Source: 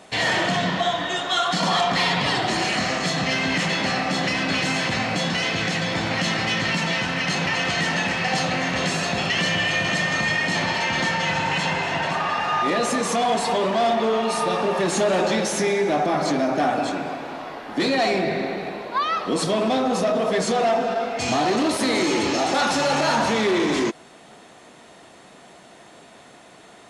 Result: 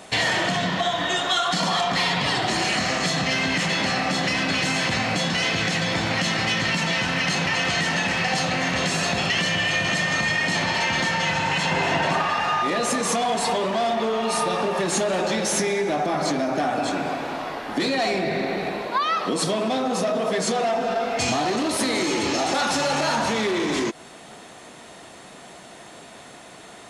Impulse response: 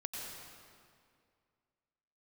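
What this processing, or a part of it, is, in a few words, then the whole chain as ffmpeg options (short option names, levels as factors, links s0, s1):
ASMR close-microphone chain: -filter_complex "[0:a]lowshelf=f=160:g=5,acompressor=threshold=0.0708:ratio=6,highshelf=f=7600:g=5,asettb=1/sr,asplit=3[s0][s1][s2];[s0]atrim=end=11.714[s3];[s1]atrim=start=11.71:end=12.22,asetpts=PTS-STARTPTS,afade=t=in:d=0.004:c=qsin,afade=t=out:st=0.506:d=0.004:c=qsin,equalizer=f=340:w=0.61:g=5[s4];[s2]atrim=start=12.216[s5];[s3][s4]acrossfade=d=0.004:c1=hsin:c2=qsin[s6];[s6][s5]acrossfade=d=0.004:c1=qsin:c2=hsin,asettb=1/sr,asplit=3[s7][s8][s9];[s7]atrim=end=18.874[s10];[s8]atrim=start=18.87:end=20.72,asetpts=PTS-STARTPTS,afade=t=in:d=0.004:c=qsin,afade=t=out:st=1.846:d=0.004:c=qsin,highpass=100[s11];[s9]atrim=start=20.716[s12];[s10][s11]acrossfade=d=0.004:c1=hsin:c2=qsin[s13];[s13][s12]acrossfade=d=0.004:c1=qsin:c2=hsin,lowshelf=f=480:g=-3,volume=1.58"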